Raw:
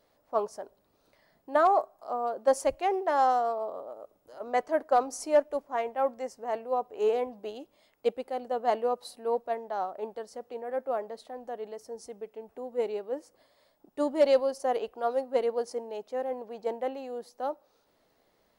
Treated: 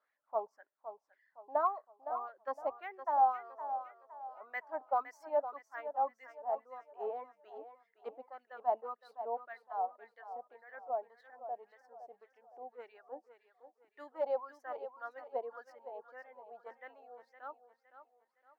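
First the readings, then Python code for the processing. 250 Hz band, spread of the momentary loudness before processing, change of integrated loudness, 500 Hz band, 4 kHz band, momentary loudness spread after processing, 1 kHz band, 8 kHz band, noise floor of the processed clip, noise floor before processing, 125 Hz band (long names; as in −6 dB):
−22.0 dB, 16 LU, −8.5 dB, −12.5 dB, below −20 dB, 18 LU, −6.0 dB, below −25 dB, −82 dBFS, −70 dBFS, can't be measured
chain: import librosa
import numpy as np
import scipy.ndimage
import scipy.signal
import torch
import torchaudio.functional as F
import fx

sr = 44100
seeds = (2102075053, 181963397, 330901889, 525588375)

y = fx.dereverb_blind(x, sr, rt60_s=1.4)
y = fx.wah_lfo(y, sr, hz=1.8, low_hz=740.0, high_hz=1900.0, q=4.9)
y = fx.echo_feedback(y, sr, ms=513, feedback_pct=39, wet_db=-11)
y = fx.dynamic_eq(y, sr, hz=260.0, q=1.6, threshold_db=-58.0, ratio=4.0, max_db=6)
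y = np.interp(np.arange(len(y)), np.arange(len(y))[::2], y[::2])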